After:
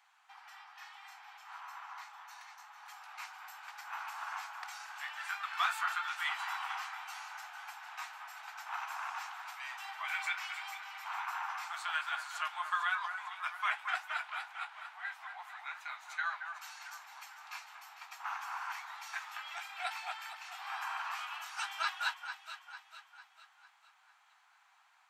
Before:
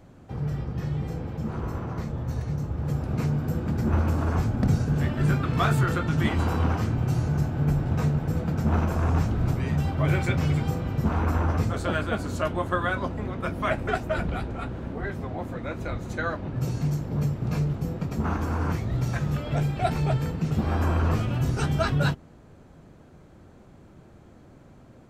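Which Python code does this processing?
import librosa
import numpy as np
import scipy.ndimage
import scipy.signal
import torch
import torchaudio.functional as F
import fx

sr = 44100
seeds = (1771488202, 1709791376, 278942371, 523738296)

p1 = scipy.signal.sosfilt(scipy.signal.butter(12, 790.0, 'highpass', fs=sr, output='sos'), x)
p2 = fx.peak_eq(p1, sr, hz=2600.0, db=6.0, octaves=1.8)
p3 = p2 + fx.echo_alternate(p2, sr, ms=225, hz=2000.0, feedback_pct=68, wet_db=-7.5, dry=0)
y = F.gain(torch.from_numpy(p3), -7.5).numpy()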